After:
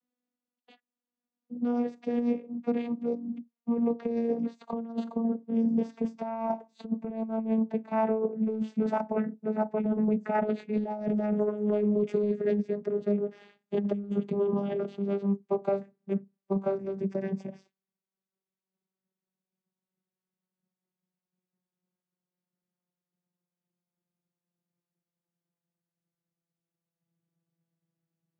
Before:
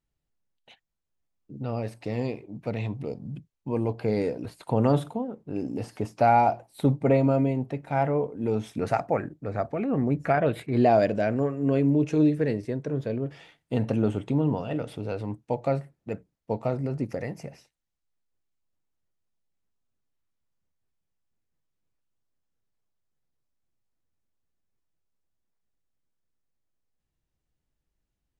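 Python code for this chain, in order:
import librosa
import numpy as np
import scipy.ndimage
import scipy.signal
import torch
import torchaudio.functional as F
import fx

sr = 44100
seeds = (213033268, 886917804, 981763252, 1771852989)

y = fx.vocoder_glide(x, sr, note=59, semitones=-7)
y = fx.over_compress(y, sr, threshold_db=-26.0, ratio=-0.5)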